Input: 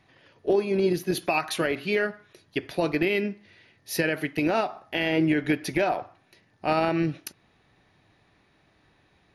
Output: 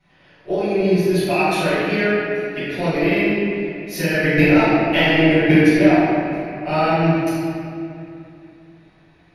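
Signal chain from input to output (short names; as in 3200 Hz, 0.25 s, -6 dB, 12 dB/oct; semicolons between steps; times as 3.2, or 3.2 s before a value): 4.12–5.58 transient shaper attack +11 dB, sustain -9 dB; reverb RT60 2.6 s, pre-delay 5 ms, DRR -15 dB; gain -14.5 dB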